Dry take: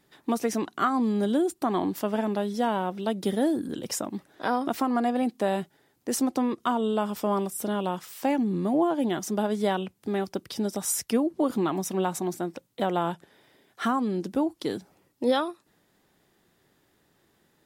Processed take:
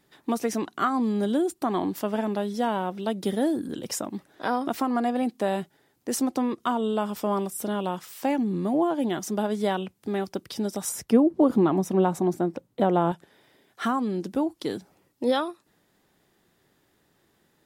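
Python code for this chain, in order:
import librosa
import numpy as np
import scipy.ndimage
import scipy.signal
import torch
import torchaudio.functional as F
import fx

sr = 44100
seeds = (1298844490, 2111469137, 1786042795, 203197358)

y = fx.tilt_shelf(x, sr, db=6.5, hz=1400.0, at=(10.89, 13.12))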